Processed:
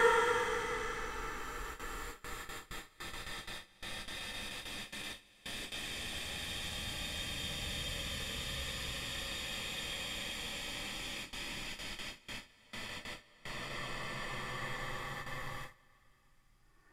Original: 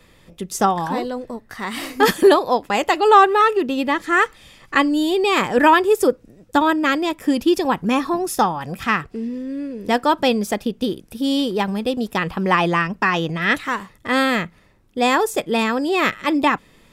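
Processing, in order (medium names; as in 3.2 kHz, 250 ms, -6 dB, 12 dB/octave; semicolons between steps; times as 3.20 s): Paulstretch 40×, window 0.10 s, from 4.27 s; hum notches 50/100/150 Hz; gate with hold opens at -37 dBFS; trim +5 dB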